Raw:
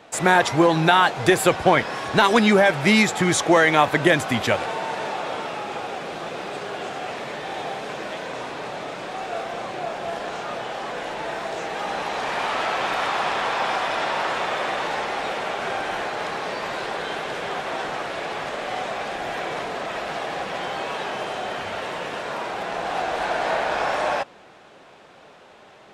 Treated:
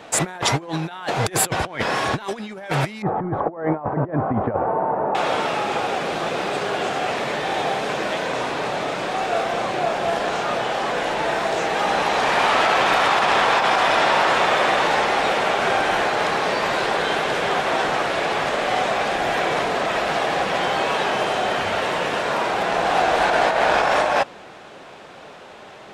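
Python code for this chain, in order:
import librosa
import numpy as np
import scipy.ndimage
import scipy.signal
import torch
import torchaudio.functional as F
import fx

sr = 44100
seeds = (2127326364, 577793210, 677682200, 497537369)

y = fx.lowpass(x, sr, hz=1100.0, slope=24, at=(3.02, 5.15))
y = fx.over_compress(y, sr, threshold_db=-24.0, ratio=-0.5)
y = y * 10.0 ** (5.0 / 20.0)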